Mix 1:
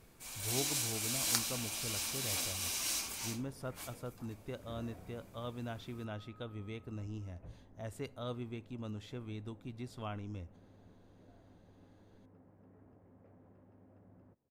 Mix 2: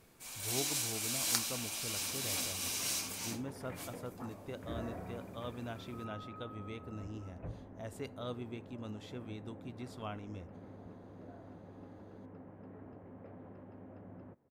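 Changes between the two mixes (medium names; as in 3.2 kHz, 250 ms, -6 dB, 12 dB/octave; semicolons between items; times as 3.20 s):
second sound +11.5 dB; master: add bass shelf 84 Hz -9 dB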